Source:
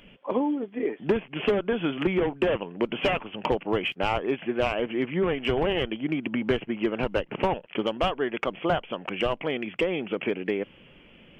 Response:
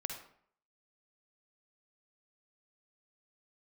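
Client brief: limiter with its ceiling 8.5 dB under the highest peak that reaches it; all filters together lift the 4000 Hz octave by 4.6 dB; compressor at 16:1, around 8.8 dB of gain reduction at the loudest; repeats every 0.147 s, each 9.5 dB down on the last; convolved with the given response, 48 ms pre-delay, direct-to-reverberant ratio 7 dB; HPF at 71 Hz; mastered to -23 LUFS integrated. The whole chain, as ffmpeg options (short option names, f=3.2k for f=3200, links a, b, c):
-filter_complex "[0:a]highpass=71,equalizer=f=4k:t=o:g=7.5,acompressor=threshold=-28dB:ratio=16,alimiter=level_in=0.5dB:limit=-24dB:level=0:latency=1,volume=-0.5dB,aecho=1:1:147|294|441|588:0.335|0.111|0.0365|0.012,asplit=2[a][b];[1:a]atrim=start_sample=2205,adelay=48[c];[b][c]afir=irnorm=-1:irlink=0,volume=-7dB[d];[a][d]amix=inputs=2:normalize=0,volume=11dB"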